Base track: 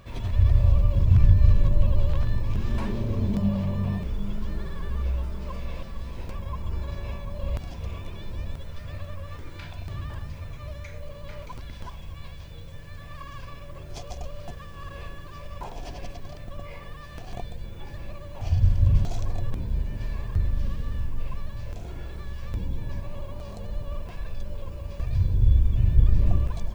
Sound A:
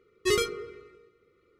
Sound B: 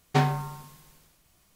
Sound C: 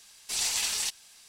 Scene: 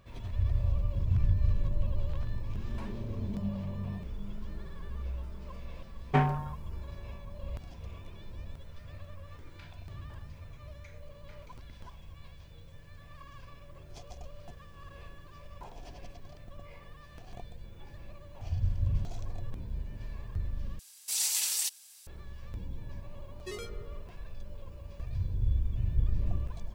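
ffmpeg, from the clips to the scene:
-filter_complex "[0:a]volume=-10dB[a];[2:a]afwtdn=0.02[b];[3:a]aemphasis=mode=production:type=bsi[c];[1:a]alimiter=limit=-20dB:level=0:latency=1:release=80[d];[a]asplit=2[e][f];[e]atrim=end=20.794[g];[c]atrim=end=1.28,asetpts=PTS-STARTPTS,volume=-9dB[h];[f]atrim=start=22.066[i];[b]atrim=end=1.55,asetpts=PTS-STARTPTS,volume=-2.5dB,afade=t=in:d=0.004:c=hsin,afade=t=out:st=1.546:d=0.004:c=hsin,adelay=5990[j];[d]atrim=end=1.59,asetpts=PTS-STARTPTS,volume=-12.5dB,afade=t=in:d=0.004:c=hsin,afade=t=out:st=1.586:d=0.004:c=hsin,adelay=23210[k];[g][h]acrossfade=d=0.004:c1=hsin:c2=hsin[l];[l][i]acrossfade=d=0.004:c1=hsin:c2=hsin[m];[m][j][k]amix=inputs=3:normalize=0"

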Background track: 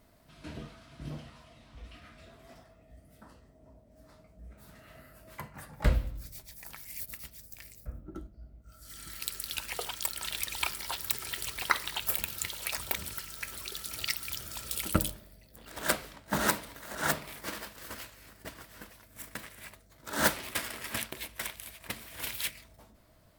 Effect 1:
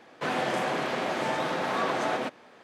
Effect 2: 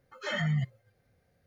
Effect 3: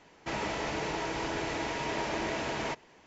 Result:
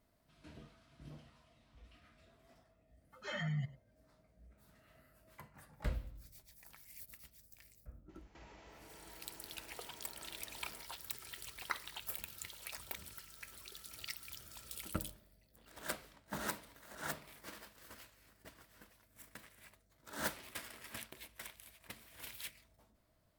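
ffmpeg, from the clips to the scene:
-filter_complex "[0:a]volume=-12.5dB[a];[2:a]aecho=1:1:100:0.119[b];[3:a]acompressor=threshold=-44dB:ratio=6:attack=3.2:release=140:knee=1:detection=peak[c];[b]atrim=end=1.46,asetpts=PTS-STARTPTS,volume=-9dB,afade=t=in:d=0.004:c=hsin,afade=t=out:st=1.456:d=0.004:c=hsin,adelay=3010[d];[c]atrim=end=3.06,asetpts=PTS-STARTPTS,volume=-12dB,afade=t=in:d=0.004:c=hsin,afade=t=out:st=3.056:d=0.004:c=hsin,adelay=8090[e];[a][d][e]amix=inputs=3:normalize=0"

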